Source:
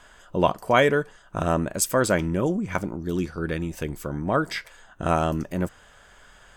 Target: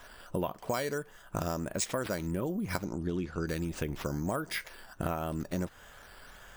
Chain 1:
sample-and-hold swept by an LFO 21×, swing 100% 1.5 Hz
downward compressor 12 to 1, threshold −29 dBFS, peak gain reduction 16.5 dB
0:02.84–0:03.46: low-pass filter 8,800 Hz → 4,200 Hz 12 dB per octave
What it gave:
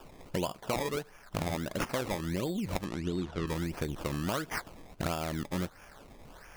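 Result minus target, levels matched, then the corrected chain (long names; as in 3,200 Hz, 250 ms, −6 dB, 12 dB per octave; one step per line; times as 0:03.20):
sample-and-hold swept by an LFO: distortion +11 dB
sample-and-hold swept by an LFO 5×, swing 100% 1.5 Hz
downward compressor 12 to 1, threshold −29 dBFS, peak gain reduction 16.5 dB
0:02.84–0:03.46: low-pass filter 8,800 Hz → 4,200 Hz 12 dB per octave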